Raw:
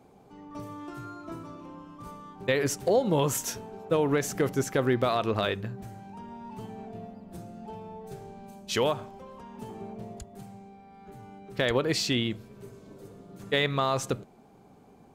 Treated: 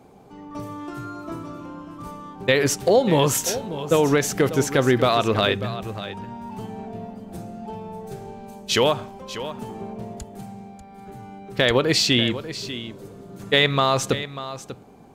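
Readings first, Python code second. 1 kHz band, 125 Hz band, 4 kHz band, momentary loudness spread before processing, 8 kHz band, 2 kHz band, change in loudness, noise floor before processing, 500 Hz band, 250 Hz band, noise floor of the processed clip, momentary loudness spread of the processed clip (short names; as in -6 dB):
+7.0 dB, +6.5 dB, +10.5 dB, 20 LU, +8.0 dB, +8.5 dB, +7.0 dB, -56 dBFS, +7.0 dB, +7.0 dB, -45 dBFS, 19 LU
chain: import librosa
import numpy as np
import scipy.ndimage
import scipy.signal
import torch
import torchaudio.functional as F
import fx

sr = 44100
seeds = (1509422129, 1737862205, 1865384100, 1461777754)

y = fx.dynamic_eq(x, sr, hz=3600.0, q=0.89, threshold_db=-46.0, ratio=4.0, max_db=4)
y = y + 10.0 ** (-13.0 / 20.0) * np.pad(y, (int(592 * sr / 1000.0), 0))[:len(y)]
y = y * 10.0 ** (6.5 / 20.0)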